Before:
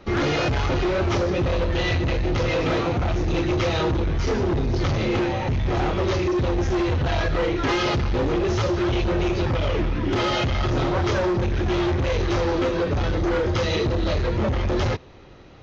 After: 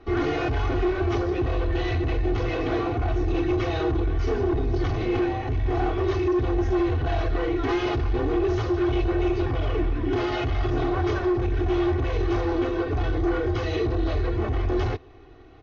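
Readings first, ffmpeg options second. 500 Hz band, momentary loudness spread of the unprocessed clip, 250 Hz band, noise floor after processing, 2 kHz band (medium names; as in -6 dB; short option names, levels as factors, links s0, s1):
-2.0 dB, 2 LU, -1.0 dB, -30 dBFS, -5.0 dB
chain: -af "lowpass=f=2000:p=1,aecho=1:1:2.7:0.93,volume=0.562"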